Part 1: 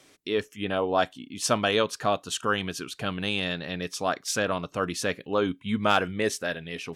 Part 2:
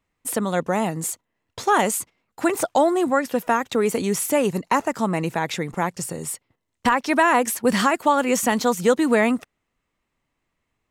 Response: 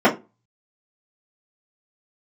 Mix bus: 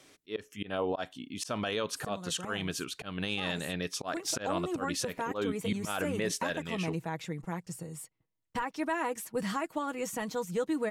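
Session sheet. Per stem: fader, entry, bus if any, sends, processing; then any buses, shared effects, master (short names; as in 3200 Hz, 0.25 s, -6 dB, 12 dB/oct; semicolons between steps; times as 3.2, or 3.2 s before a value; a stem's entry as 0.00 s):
-1.5 dB, 0.00 s, no send, auto swell 0.183 s
4.04 s -23.5 dB -> 4.75 s -16.5 dB, 1.70 s, no send, low shelf 190 Hz +9.5 dB; comb 6.3 ms, depth 54%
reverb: off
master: limiter -21.5 dBFS, peak gain reduction 10 dB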